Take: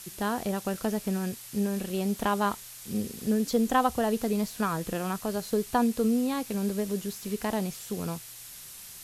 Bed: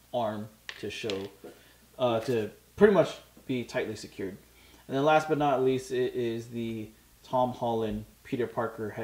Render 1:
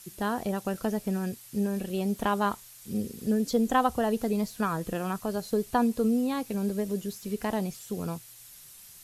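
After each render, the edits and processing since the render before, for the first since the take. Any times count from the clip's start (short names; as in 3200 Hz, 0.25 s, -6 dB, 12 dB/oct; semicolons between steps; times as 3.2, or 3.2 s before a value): denoiser 7 dB, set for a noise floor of -45 dBFS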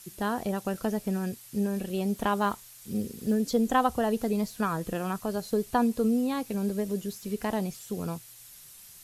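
2.36–3.37 block floating point 7-bit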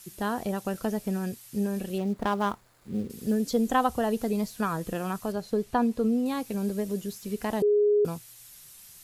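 1.98–3.1 median filter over 15 samples; 5.32–6.26 high shelf 5700 Hz -11 dB; 7.62–8.05 bleep 415 Hz -18.5 dBFS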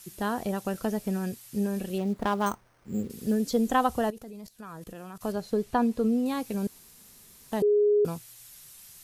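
2.46–3.03 careless resampling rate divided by 6×, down filtered, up hold; 4.1–5.21 level quantiser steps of 21 dB; 6.67–7.52 room tone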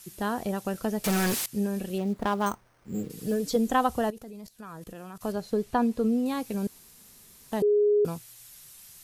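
1.04–1.46 overdrive pedal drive 36 dB, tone 7000 Hz, clips at -18.5 dBFS; 2.94–3.56 comb 6.5 ms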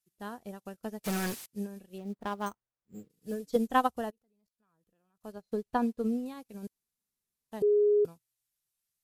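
upward expander 2.5:1, over -44 dBFS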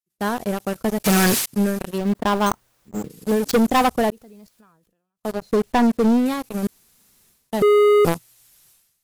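sample leveller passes 5; sustainer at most 61 dB/s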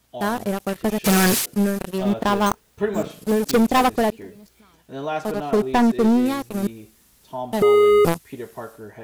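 add bed -3.5 dB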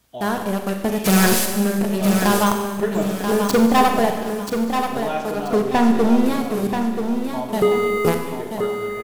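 feedback echo 0.983 s, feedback 32%, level -6.5 dB; Schroeder reverb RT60 1.3 s, combs from 31 ms, DRR 4.5 dB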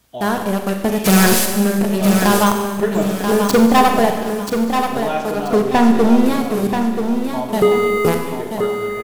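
gain +3.5 dB; limiter -3 dBFS, peak gain reduction 2 dB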